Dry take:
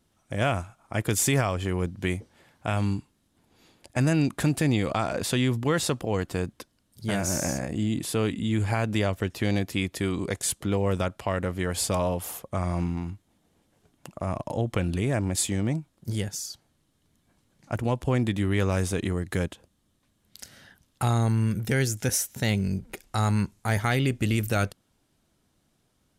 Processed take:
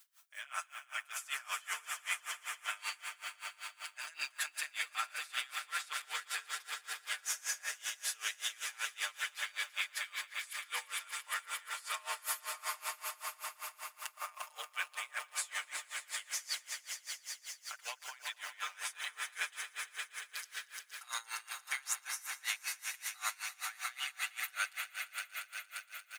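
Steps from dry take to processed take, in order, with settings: high-pass 1.3 kHz 24 dB/octave; comb 6.6 ms, depth 99%; reverse; compression, threshold -39 dBFS, peak gain reduction 18.5 dB; reverse; added noise blue -69 dBFS; echo with a slow build-up 116 ms, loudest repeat 5, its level -9.5 dB; logarithmic tremolo 5.2 Hz, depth 25 dB; trim +6 dB

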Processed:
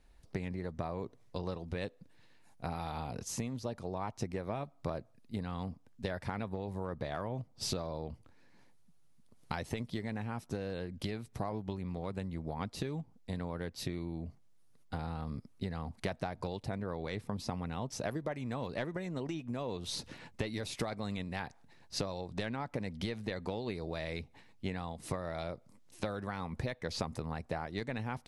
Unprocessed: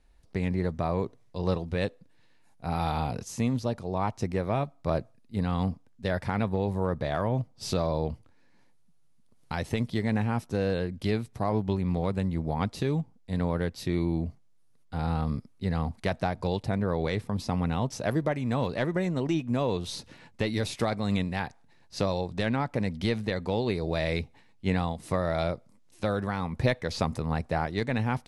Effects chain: compression 6:1, threshold -35 dBFS, peak gain reduction 15 dB; harmonic-percussive split percussive +4 dB; trim -1.5 dB

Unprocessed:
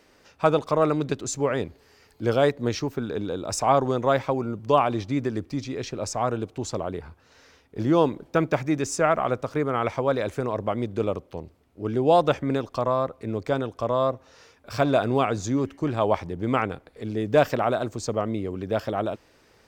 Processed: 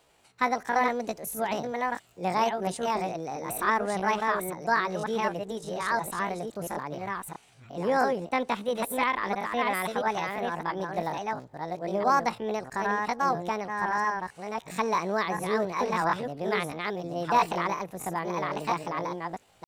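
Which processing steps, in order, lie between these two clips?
chunks repeated in reverse 669 ms, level -3 dB; pitch shift +8 st; trim -5.5 dB

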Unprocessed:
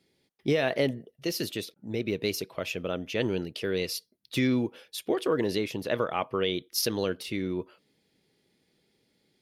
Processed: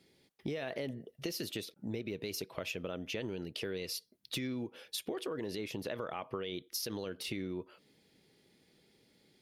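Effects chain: peak limiter -21 dBFS, peak gain reduction 6.5 dB; compression 6:1, threshold -39 dBFS, peak gain reduction 13 dB; trim +3 dB

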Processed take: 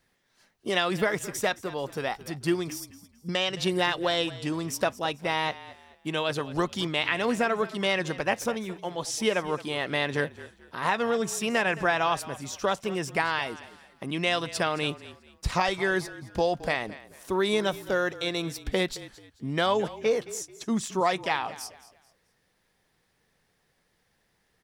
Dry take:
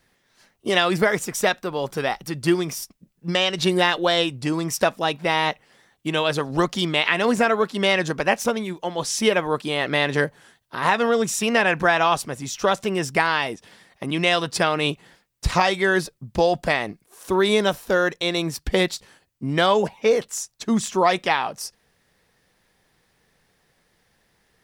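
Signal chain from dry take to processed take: 2.80–3.29 s: Chebyshev band-stop 510–4600 Hz, order 4; frequency-shifting echo 218 ms, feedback 32%, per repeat -38 Hz, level -17 dB; trim -6.5 dB

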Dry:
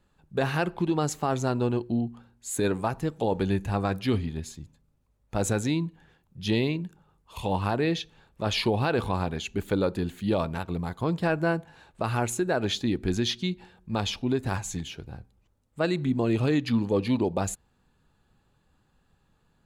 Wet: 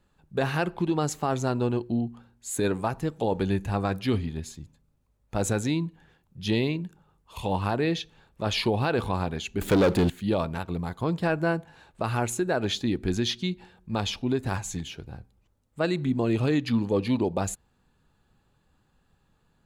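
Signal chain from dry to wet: 9.61–10.10 s: waveshaping leveller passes 3

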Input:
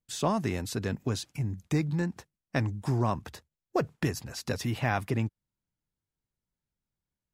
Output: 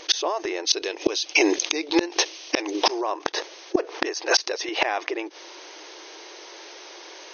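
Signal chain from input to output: brick-wall FIR band-pass 310–6500 Hz; peaking EQ 1.4 kHz -5 dB 0.47 oct; inverted gate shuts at -30 dBFS, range -33 dB; 0.67–3.01 s: resonant high shelf 2.2 kHz +6.5 dB, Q 1.5; loudness maximiser +35.5 dB; level flattener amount 50%; trim -7.5 dB

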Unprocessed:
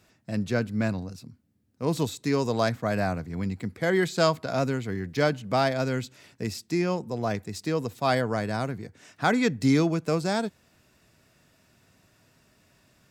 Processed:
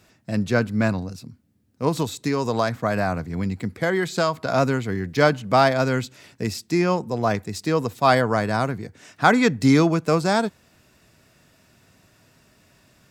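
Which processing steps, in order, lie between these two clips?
1.88–4.43 s: compression, threshold -24 dBFS, peak gain reduction 8 dB; dynamic bell 1.1 kHz, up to +5 dB, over -40 dBFS, Q 1.3; trim +5 dB

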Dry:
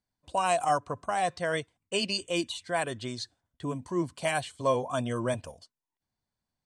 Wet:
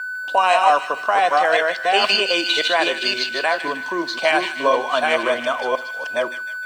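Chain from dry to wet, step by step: chunks repeated in reverse 523 ms, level -2 dB; whistle 1.5 kHz -41 dBFS; three-band isolator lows -21 dB, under 230 Hz, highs -19 dB, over 5.2 kHz; in parallel at +2.5 dB: compression, threshold -35 dBFS, peak gain reduction 14 dB; on the sum: frequency weighting A; crossover distortion -57.5 dBFS; feedback echo behind a high-pass 154 ms, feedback 50%, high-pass 1.9 kHz, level -7 dB; on a send at -14 dB: reverberation RT60 0.35 s, pre-delay 5 ms; 2.04–2.68 s: on the sum: three bands compressed up and down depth 100%; trim +8.5 dB

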